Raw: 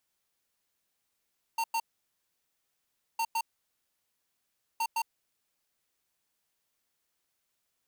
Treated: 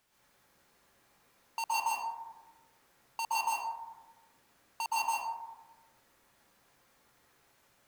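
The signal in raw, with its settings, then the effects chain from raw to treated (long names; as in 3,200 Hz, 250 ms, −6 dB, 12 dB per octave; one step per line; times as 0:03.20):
beeps in groups square 912 Hz, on 0.06 s, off 0.10 s, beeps 2, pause 1.39 s, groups 3, −29.5 dBFS
high-shelf EQ 3,600 Hz −9.5 dB
in parallel at −4.5 dB: sine wavefolder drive 9 dB, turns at −29 dBFS
on the sum: dense smooth reverb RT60 1.1 s, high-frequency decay 0.35×, pre-delay 110 ms, DRR −7.5 dB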